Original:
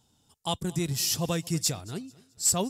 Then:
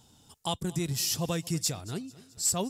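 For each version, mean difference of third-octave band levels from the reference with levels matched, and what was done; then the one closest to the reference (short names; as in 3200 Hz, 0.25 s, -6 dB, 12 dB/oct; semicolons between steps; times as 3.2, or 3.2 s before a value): 1.5 dB: compressor 1.5:1, threshold -52 dBFS, peak gain reduction 11.5 dB; gain +7.5 dB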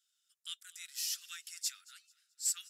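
16.0 dB: steep high-pass 1300 Hz 96 dB/oct; gain -9 dB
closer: first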